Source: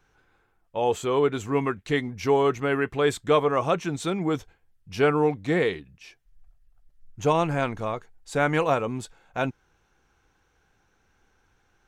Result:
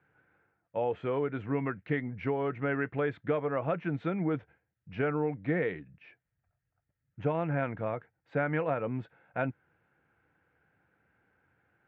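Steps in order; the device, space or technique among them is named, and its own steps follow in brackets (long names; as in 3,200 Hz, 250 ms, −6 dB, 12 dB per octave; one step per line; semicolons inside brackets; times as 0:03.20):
bass amplifier (downward compressor 5 to 1, threshold −23 dBFS, peak gain reduction 8 dB; loudspeaker in its box 90–2,100 Hz, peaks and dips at 96 Hz −4 dB, 230 Hz −4 dB, 390 Hz −7 dB, 800 Hz −5 dB, 1,100 Hz −9 dB)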